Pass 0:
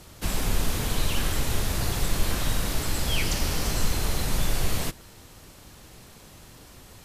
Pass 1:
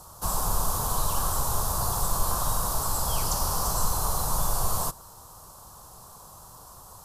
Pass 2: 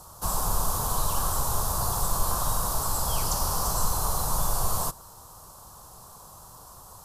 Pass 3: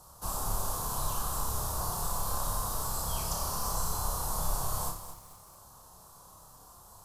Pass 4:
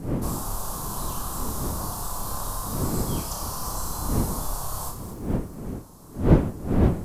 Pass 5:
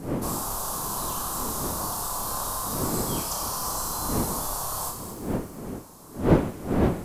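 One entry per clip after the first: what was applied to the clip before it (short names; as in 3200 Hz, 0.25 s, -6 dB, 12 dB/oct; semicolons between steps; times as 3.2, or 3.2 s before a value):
EQ curve 160 Hz 0 dB, 280 Hz -8 dB, 1100 Hz +14 dB, 2100 Hz -17 dB, 4900 Hz +2 dB, 10000 Hz +9 dB; gain -3 dB
nothing audible
on a send: flutter echo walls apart 5.1 m, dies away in 0.37 s; on the sum: lo-fi delay 0.219 s, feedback 35%, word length 7-bit, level -11 dB; gain -8 dB
wind noise 250 Hz -29 dBFS; gain +1.5 dB
low shelf 180 Hz -11 dB; thin delay 79 ms, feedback 75%, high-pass 1900 Hz, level -13 dB; gain +3 dB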